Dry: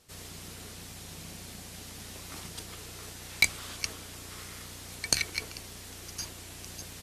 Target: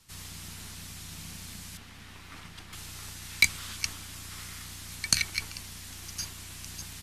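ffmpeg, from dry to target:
ffmpeg -i in.wav -filter_complex "[0:a]asettb=1/sr,asplit=3[link_01][link_02][link_03];[link_01]atrim=end=1.774[link_04];[link_02]atrim=start=1.77:end=2.73,asetpts=PTS-STARTPTS,afade=type=in:duration=0.004:curve=qsin,afade=type=out:start_time=0.956:duration=0.004:curve=qsin,bass=frequency=250:gain=-5,treble=frequency=4000:gain=-14[link_05];[link_03]atrim=start=2.726[link_06];[link_04][link_05]acrossfade=duration=0.004:curve1=hsin:curve2=qsin[link_07];[link_07][link_06]acrossfade=duration=0.004:curve1=qsin:curve2=hsin,acrossover=split=300|910|3800[link_08][link_09][link_10][link_11];[link_09]aeval=exprs='abs(val(0))':channel_layout=same[link_12];[link_08][link_12][link_10][link_11]amix=inputs=4:normalize=0,volume=2dB" out.wav

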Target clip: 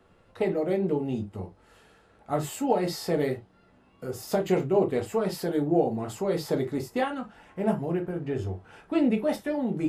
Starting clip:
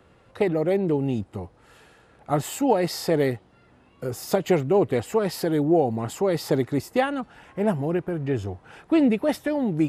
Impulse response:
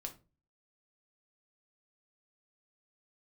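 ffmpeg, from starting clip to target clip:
-filter_complex "[1:a]atrim=start_sample=2205,atrim=end_sample=4410,asetrate=52920,aresample=44100[link_01];[0:a][link_01]afir=irnorm=-1:irlink=0"

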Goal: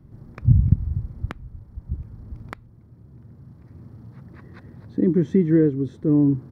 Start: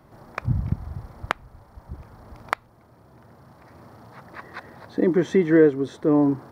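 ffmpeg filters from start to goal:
ffmpeg -i in.wav -af "firequalizer=gain_entry='entry(110,0);entry(670,-24);entry(1800,-21)':delay=0.05:min_phase=1,volume=9dB" out.wav

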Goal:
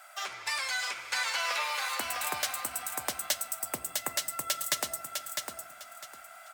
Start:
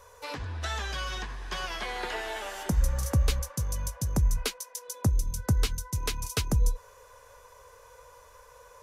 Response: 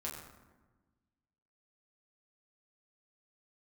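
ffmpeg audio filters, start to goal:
-filter_complex "[0:a]asetrate=59535,aresample=44100,highpass=850,aecho=1:1:654|1308|1962:0.562|0.135|0.0324,asplit=2[link_01][link_02];[1:a]atrim=start_sample=2205[link_03];[link_02][link_03]afir=irnorm=-1:irlink=0,volume=-8.5dB[link_04];[link_01][link_04]amix=inputs=2:normalize=0,volume=1.5dB"

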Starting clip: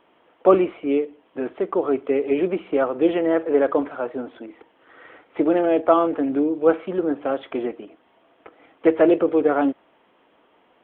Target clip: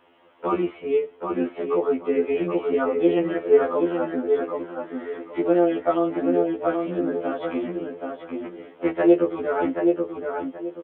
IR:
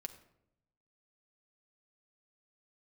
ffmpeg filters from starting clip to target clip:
-filter_complex "[0:a]asplit=2[link_01][link_02];[link_02]acompressor=threshold=-30dB:ratio=6,volume=-2dB[link_03];[link_01][link_03]amix=inputs=2:normalize=0,asplit=2[link_04][link_05];[link_05]adelay=778,lowpass=frequency=2400:poles=1,volume=-4dB,asplit=2[link_06][link_07];[link_07]adelay=778,lowpass=frequency=2400:poles=1,volume=0.26,asplit=2[link_08][link_09];[link_09]adelay=778,lowpass=frequency=2400:poles=1,volume=0.26,asplit=2[link_10][link_11];[link_11]adelay=778,lowpass=frequency=2400:poles=1,volume=0.26[link_12];[link_04][link_06][link_08][link_10][link_12]amix=inputs=5:normalize=0,afftfilt=real='re*2*eq(mod(b,4),0)':imag='im*2*eq(mod(b,4),0)':win_size=2048:overlap=0.75,volume=-1.5dB"

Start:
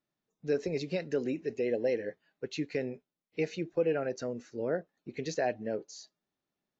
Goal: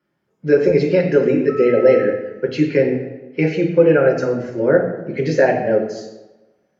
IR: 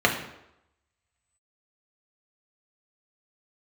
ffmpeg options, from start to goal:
-filter_complex "[0:a]asettb=1/sr,asplit=3[link_01][link_02][link_03];[link_01]atrim=end=1.494[link_04];[link_02]atrim=start=1.49:end=2.04,asetpts=PTS-STARTPTS,afade=type=in:duration=0.004:curve=qsin,afade=type=out:start_time=0.546:duration=0.004:curve=qsin,aeval=exprs='val(0)+0.00447*sin(2*PI*1300*n/s)':channel_layout=same[link_05];[link_03]atrim=start=2.036[link_06];[link_04][link_05]acrossfade=duration=0.004:curve1=hsin:curve2=qsin[link_07];[link_07][link_06]acrossfade=duration=0.004:curve1=qsin:curve2=hsin[link_08];[1:a]atrim=start_sample=2205,asetrate=33075,aresample=44100[link_09];[link_08][link_09]afir=irnorm=-1:irlink=0,volume=-2.5dB"

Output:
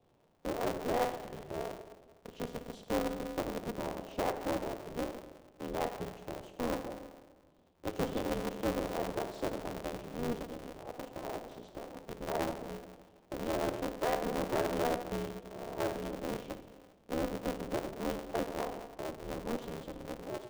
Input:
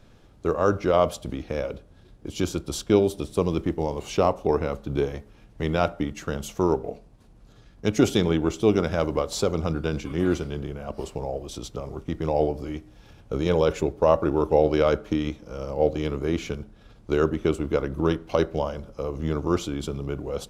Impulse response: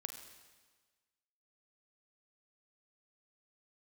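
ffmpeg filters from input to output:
-filter_complex "[0:a]asuperstop=centerf=1600:order=8:qfactor=0.91,acrossover=split=290 2500:gain=0.2 1 0.0794[link_01][link_02][link_03];[link_01][link_02][link_03]amix=inputs=3:normalize=0,asoftclip=type=tanh:threshold=-17dB[link_04];[1:a]atrim=start_sample=2205[link_05];[link_04][link_05]afir=irnorm=-1:irlink=0,aeval=exprs='val(0)*sgn(sin(2*PI*120*n/s))':channel_layout=same,volume=-5dB"

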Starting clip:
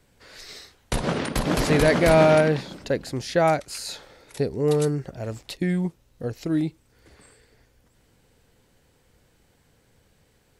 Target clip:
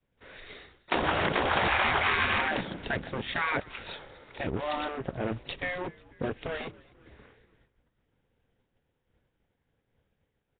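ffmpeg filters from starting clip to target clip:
ffmpeg -i in.wav -filter_complex "[0:a]agate=range=-33dB:threshold=-51dB:ratio=3:detection=peak,asplit=2[link_01][link_02];[link_02]acrusher=bits=4:mix=0:aa=0.5,volume=-3dB[link_03];[link_01][link_03]amix=inputs=2:normalize=0,afftfilt=real='re*lt(hypot(re,im),0.316)':imag='im*lt(hypot(re,im),0.316)':win_size=1024:overlap=0.75,asplit=5[link_04][link_05][link_06][link_07][link_08];[link_05]adelay=244,afreqshift=-74,volume=-23dB[link_09];[link_06]adelay=488,afreqshift=-148,volume=-27.4dB[link_10];[link_07]adelay=732,afreqshift=-222,volume=-31.9dB[link_11];[link_08]adelay=976,afreqshift=-296,volume=-36.3dB[link_12];[link_04][link_09][link_10][link_11][link_12]amix=inputs=5:normalize=0" -ar 8000 -c:a nellymoser out.flv

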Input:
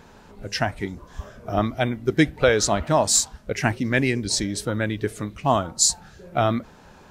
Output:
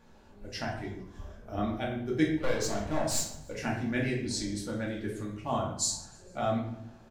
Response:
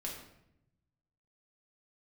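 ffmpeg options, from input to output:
-filter_complex "[0:a]asettb=1/sr,asplit=3[link_01][link_02][link_03];[link_01]atrim=end=2.294[link_04];[link_02]atrim=start=2.29:end=3.53,asetpts=PTS-STARTPTS,afade=type=in:duration=0.004:curve=qsin,afade=type=out:start_time=1.236:duration=0.004:curve=qsin,aeval=exprs='clip(val(0),-1,0.112)':channel_layout=same[link_05];[link_03]atrim=start=3.526[link_06];[link_04][link_05]acrossfade=duration=0.004:curve1=hsin:curve2=qsin[link_07];[link_07][link_06]acrossfade=duration=0.004:curve1=qsin:curve2=hsin,aecho=1:1:151|302|453|604:0.0668|0.0368|0.0202|0.0111[link_08];[1:a]atrim=start_sample=2205,asetrate=57330,aresample=44100[link_09];[link_08][link_09]afir=irnorm=-1:irlink=0,volume=-8dB"

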